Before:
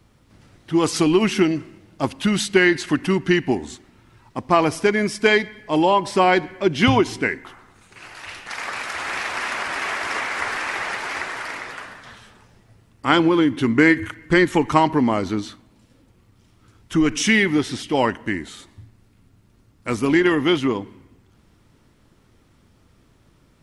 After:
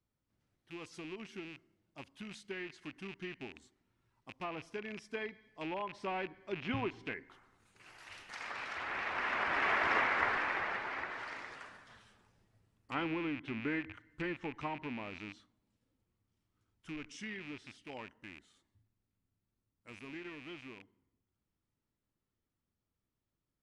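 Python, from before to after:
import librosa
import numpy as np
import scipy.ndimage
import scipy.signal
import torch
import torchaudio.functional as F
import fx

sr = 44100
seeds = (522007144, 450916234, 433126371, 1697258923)

y = fx.rattle_buzz(x, sr, strikes_db=-30.0, level_db=-10.0)
y = fx.doppler_pass(y, sr, speed_mps=7, closest_m=3.4, pass_at_s=9.89)
y = fx.env_lowpass_down(y, sr, base_hz=2600.0, full_db=-32.0)
y = y * librosa.db_to_amplitude(-4.0)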